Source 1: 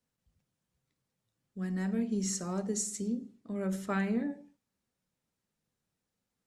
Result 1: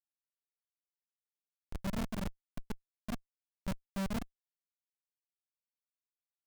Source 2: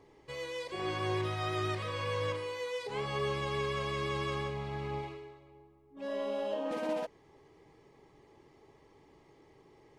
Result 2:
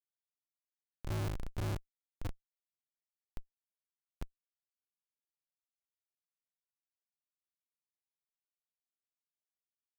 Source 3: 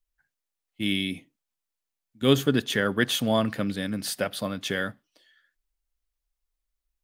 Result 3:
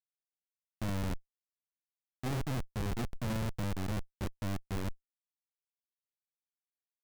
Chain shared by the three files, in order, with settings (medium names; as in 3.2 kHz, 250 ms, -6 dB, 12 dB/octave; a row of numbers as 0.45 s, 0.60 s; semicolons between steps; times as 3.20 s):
RIAA curve playback; touch-sensitive flanger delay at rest 10.4 ms, full sweep at -19.5 dBFS; de-hum 178.5 Hz, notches 13; Schmitt trigger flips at -22 dBFS; band-stop 1.9 kHz, Q 12; hard clipper -31.5 dBFS; trim -1.5 dB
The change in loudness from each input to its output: -7.5 LU, -6.5 LU, -11.5 LU